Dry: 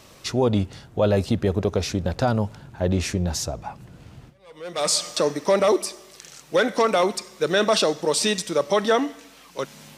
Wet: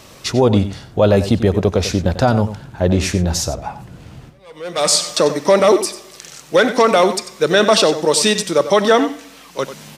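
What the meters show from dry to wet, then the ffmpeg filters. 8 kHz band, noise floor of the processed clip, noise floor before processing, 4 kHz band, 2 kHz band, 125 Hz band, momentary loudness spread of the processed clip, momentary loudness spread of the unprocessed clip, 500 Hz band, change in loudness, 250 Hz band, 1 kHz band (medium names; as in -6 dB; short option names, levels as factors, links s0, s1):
+7.0 dB, -42 dBFS, -49 dBFS, +7.0 dB, +7.0 dB, +7.0 dB, 13 LU, 13 LU, +7.0 dB, +7.0 dB, +7.5 dB, +7.5 dB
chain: -filter_complex "[0:a]asplit=2[s0][s1];[s1]adelay=93.29,volume=0.251,highshelf=f=4000:g=-2.1[s2];[s0][s2]amix=inputs=2:normalize=0,volume=2.24"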